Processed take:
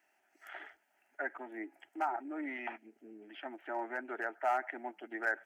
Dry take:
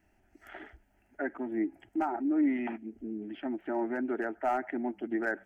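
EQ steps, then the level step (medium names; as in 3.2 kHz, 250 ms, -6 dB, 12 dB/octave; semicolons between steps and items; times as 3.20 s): high-pass 730 Hz 12 dB/octave; +1.0 dB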